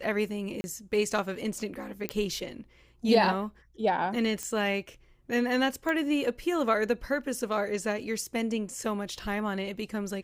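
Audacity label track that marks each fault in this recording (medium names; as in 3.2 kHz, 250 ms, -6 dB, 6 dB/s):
0.610000	0.640000	dropout 30 ms
2.090000	2.090000	pop -14 dBFS
4.430000	4.430000	pop -19 dBFS
5.890000	5.890000	pop -19 dBFS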